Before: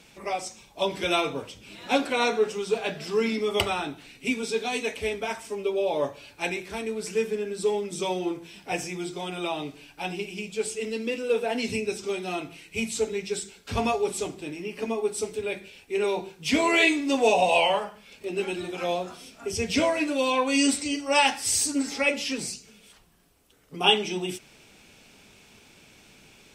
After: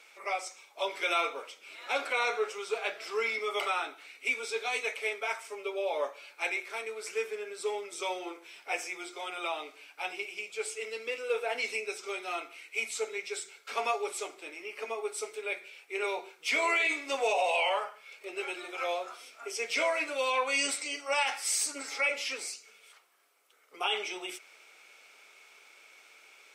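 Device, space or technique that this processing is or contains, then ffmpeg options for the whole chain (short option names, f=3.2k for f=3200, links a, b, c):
laptop speaker: -af "highpass=f=440:w=0.5412,highpass=f=440:w=1.3066,equalizer=f=1.3k:t=o:w=0.33:g=9.5,equalizer=f=2.2k:t=o:w=0.22:g=10,alimiter=limit=-14.5dB:level=0:latency=1:release=31,volume=-5dB"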